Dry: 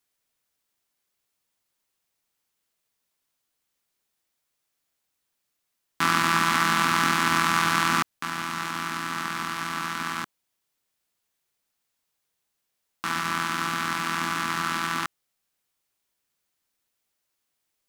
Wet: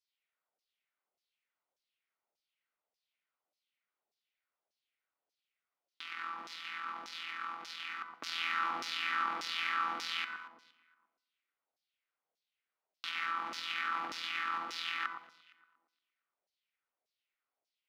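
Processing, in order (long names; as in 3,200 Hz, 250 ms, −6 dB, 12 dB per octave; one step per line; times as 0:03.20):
notch filter 1,700 Hz, Q 11
compressor whose output falls as the input rises −31 dBFS, ratio −1
octave-band graphic EQ 125/1,000/8,000 Hz −11/−8/−10 dB
delay that swaps between a low-pass and a high-pass 116 ms, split 1,300 Hz, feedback 56%, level −7 dB
auto-filter band-pass saw down 1.7 Hz 610–5,700 Hz
on a send at −18 dB: parametric band 180 Hz +11.5 dB 0.77 octaves + convolution reverb RT60 0.65 s, pre-delay 61 ms
on the sum: one half of a high-frequency compander decoder only
level +3 dB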